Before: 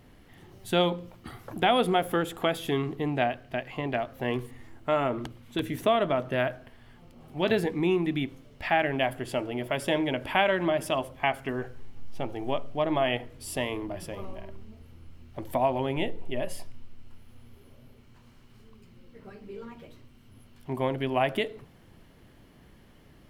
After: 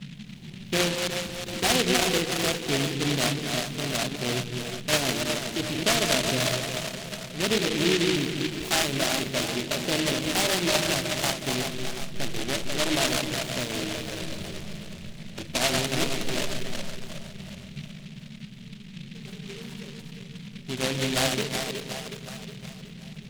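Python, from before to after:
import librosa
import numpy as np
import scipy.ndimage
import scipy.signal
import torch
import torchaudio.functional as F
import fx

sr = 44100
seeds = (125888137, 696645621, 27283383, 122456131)

p1 = fx.reverse_delay(x, sr, ms=154, wet_db=-4.5)
p2 = scipy.signal.sosfilt(scipy.signal.butter(2, 1200.0, 'lowpass', fs=sr, output='sos'), p1)
p3 = p2 + fx.echo_split(p2, sr, split_hz=370.0, low_ms=177, high_ms=367, feedback_pct=52, wet_db=-6.5, dry=0)
p4 = fx.dmg_noise_band(p3, sr, seeds[0], low_hz=130.0, high_hz=220.0, level_db=-42.0)
y = fx.noise_mod_delay(p4, sr, seeds[1], noise_hz=2800.0, depth_ms=0.27)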